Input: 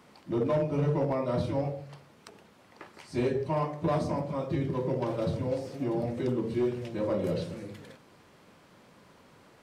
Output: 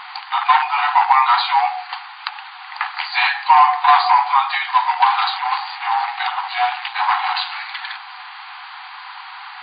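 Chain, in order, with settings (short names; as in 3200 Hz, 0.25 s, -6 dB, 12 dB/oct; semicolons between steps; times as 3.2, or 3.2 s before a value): 5.36–7.52 half-wave gain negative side -7 dB; FFT band-pass 730–4800 Hz; maximiser +28 dB; gain -1 dB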